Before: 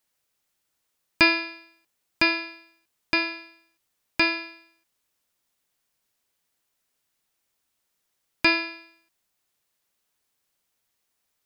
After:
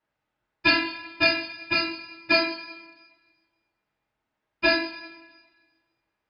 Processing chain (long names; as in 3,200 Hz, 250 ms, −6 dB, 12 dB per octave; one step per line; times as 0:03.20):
low-pass that shuts in the quiet parts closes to 1,700 Hz, open at −23 dBFS
time stretch by phase vocoder 0.55×
coupled-rooms reverb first 0.49 s, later 1.5 s, from −16 dB, DRR −8.5 dB